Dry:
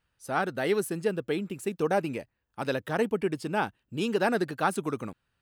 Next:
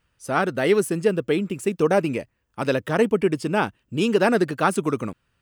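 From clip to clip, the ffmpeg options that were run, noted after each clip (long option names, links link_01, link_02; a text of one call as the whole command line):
ffmpeg -i in.wav -af "equalizer=frequency=800:width_type=o:width=0.33:gain=-5,equalizer=frequency=1600:width_type=o:width=0.33:gain=-3,equalizer=frequency=4000:width_type=o:width=0.33:gain=-5,equalizer=frequency=12500:width_type=o:width=0.33:gain=-8,volume=8dB" out.wav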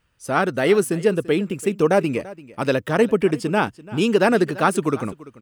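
ffmpeg -i in.wav -af "aecho=1:1:339:0.112,volume=2dB" out.wav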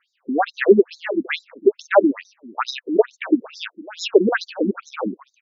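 ffmpeg -i in.wav -af "afftfilt=real='re*between(b*sr/1024,250*pow(5300/250,0.5+0.5*sin(2*PI*2.3*pts/sr))/1.41,250*pow(5300/250,0.5+0.5*sin(2*PI*2.3*pts/sr))*1.41)':imag='im*between(b*sr/1024,250*pow(5300/250,0.5+0.5*sin(2*PI*2.3*pts/sr))/1.41,250*pow(5300/250,0.5+0.5*sin(2*PI*2.3*pts/sr))*1.41)':win_size=1024:overlap=0.75,volume=8dB" out.wav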